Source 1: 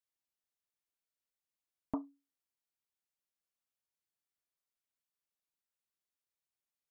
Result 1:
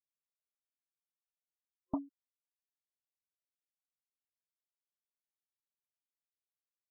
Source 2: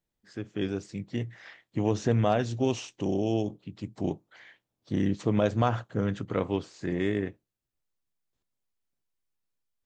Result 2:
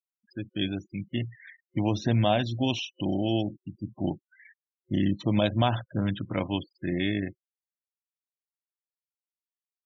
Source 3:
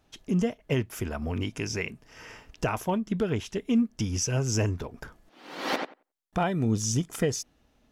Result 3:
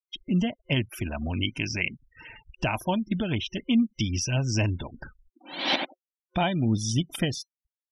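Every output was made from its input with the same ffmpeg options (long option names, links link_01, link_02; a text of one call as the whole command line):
ffmpeg -i in.wav -af "afftfilt=real='re*gte(hypot(re,im),0.01)':imag='im*gte(hypot(re,im),0.01)':win_size=1024:overlap=0.75,superequalizer=7b=0.316:10b=0.562:12b=2:13b=3.16:15b=0.282,volume=1.5dB" out.wav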